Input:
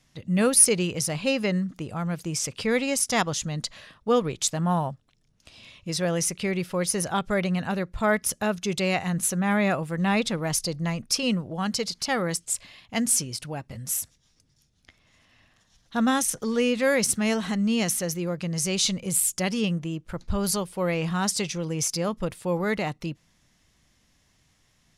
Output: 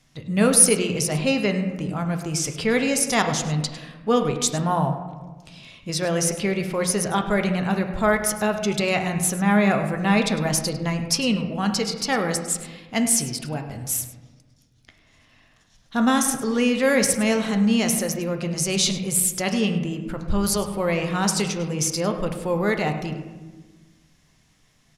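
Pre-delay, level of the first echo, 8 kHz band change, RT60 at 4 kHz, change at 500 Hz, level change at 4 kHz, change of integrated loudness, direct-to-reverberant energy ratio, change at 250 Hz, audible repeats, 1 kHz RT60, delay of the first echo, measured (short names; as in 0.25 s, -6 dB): 3 ms, -15.5 dB, +2.5 dB, 0.80 s, +3.5 dB, +3.0 dB, +3.5 dB, 4.5 dB, +4.0 dB, 1, 1.2 s, 0.103 s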